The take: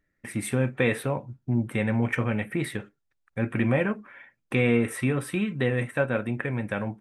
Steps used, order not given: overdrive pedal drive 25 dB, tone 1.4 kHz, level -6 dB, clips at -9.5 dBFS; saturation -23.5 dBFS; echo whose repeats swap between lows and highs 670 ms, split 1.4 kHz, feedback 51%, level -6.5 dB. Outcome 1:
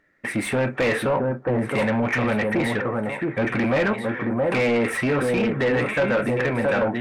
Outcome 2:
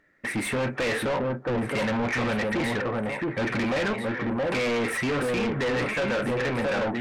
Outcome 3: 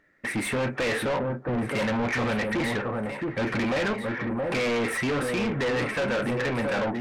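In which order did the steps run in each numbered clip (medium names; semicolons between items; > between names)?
echo whose repeats swap between lows and highs > saturation > overdrive pedal; echo whose repeats swap between lows and highs > overdrive pedal > saturation; overdrive pedal > echo whose repeats swap between lows and highs > saturation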